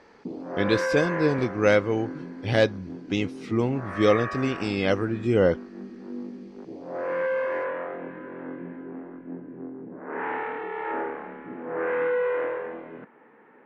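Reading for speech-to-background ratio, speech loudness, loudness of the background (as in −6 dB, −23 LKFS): 7.5 dB, −25.0 LKFS, −32.5 LKFS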